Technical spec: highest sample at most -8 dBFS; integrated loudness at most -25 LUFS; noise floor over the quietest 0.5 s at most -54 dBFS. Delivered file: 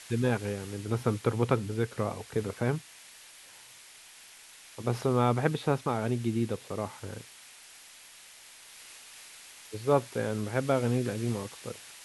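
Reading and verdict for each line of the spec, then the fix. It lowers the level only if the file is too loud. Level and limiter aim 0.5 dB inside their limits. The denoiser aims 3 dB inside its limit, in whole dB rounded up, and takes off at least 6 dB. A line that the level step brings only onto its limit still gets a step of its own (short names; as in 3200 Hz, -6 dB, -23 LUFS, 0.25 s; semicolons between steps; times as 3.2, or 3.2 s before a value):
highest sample -11.0 dBFS: OK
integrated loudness -30.5 LUFS: OK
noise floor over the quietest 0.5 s -52 dBFS: fail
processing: denoiser 6 dB, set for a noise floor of -52 dBFS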